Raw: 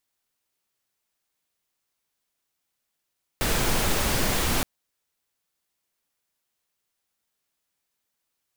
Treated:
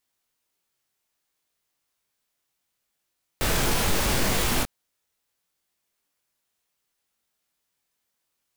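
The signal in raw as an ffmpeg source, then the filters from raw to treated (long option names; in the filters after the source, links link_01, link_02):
-f lavfi -i "anoisesrc=color=pink:amplitude=0.343:duration=1.22:sample_rate=44100:seed=1"
-filter_complex "[0:a]flanger=delay=20:depth=3.3:speed=0.68,asplit=2[link_01][link_02];[link_02]asoftclip=type=hard:threshold=-26dB,volume=-3dB[link_03];[link_01][link_03]amix=inputs=2:normalize=0"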